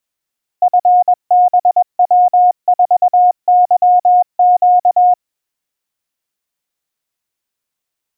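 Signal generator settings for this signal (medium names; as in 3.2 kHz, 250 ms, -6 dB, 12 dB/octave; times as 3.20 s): Morse "FBW4YQ" 21 wpm 721 Hz -5.5 dBFS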